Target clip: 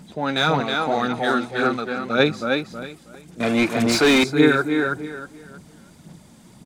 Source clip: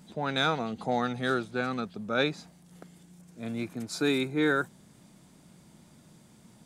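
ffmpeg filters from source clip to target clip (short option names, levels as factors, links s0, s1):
-filter_complex "[0:a]asplit=2[s0][s1];[s1]adelay=320,lowpass=f=4800:p=1,volume=0.708,asplit=2[s2][s3];[s3]adelay=320,lowpass=f=4800:p=1,volume=0.28,asplit=2[s4][s5];[s5]adelay=320,lowpass=f=4800:p=1,volume=0.28,asplit=2[s6][s7];[s7]adelay=320,lowpass=f=4800:p=1,volume=0.28[s8];[s2][s4][s6][s8]amix=inputs=4:normalize=0[s9];[s0][s9]amix=inputs=2:normalize=0,aphaser=in_gain=1:out_gain=1:delay=3.8:decay=0.4:speed=1.8:type=sinusoidal,asettb=1/sr,asplit=3[s10][s11][s12];[s10]atrim=end=0.604[s13];[s11]atrim=start=0.6:end=2.2,asetpts=PTS-STARTPTS,afade=t=in:d=0.004:c=qsin,afade=t=out:st=1.596:d=0.004:c=qsin,equalizer=f=100:w=0.79:g=-7.5[s14];[s12]atrim=start=2.196[s15];[s13][s14]acrossfade=d=0.004:c1=hsin:c2=qsin[s16];[s16][s15]acrossfade=d=0.004:c1=qsin:c2=hsin,asettb=1/sr,asplit=3[s17][s18][s19];[s17]atrim=end=3.404[s20];[s18]atrim=start=3.4:end=4.24,asetpts=PTS-STARTPTS,afade=t=in:d=0.004:c=qsin,afade=t=out:st=0.836:d=0.004:c=qsin,asplit=2[s21][s22];[s22]highpass=f=720:p=1,volume=17.8,asoftclip=type=tanh:threshold=0.2[s23];[s21][s23]amix=inputs=2:normalize=0,lowpass=f=3000:p=1,volume=0.501[s24];[s19]atrim=start=4.236[s25];[s20][s24]acrossfade=d=0.004:c1=hsin:c2=qsin[s26];[s26][s25]acrossfade=d=0.004:c1=qsin:c2=hsin,volume=2"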